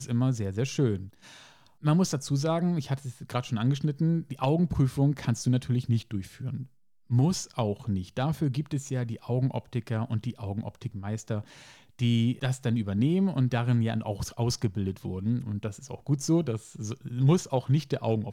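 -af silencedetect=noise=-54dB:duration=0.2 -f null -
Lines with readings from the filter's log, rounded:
silence_start: 6.68
silence_end: 7.09 | silence_duration: 0.41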